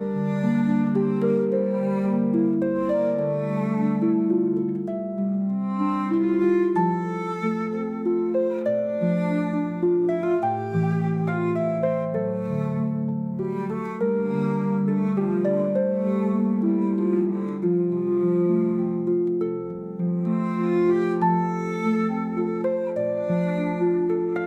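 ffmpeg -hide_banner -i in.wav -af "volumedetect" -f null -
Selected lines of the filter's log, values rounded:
mean_volume: -22.9 dB
max_volume: -10.2 dB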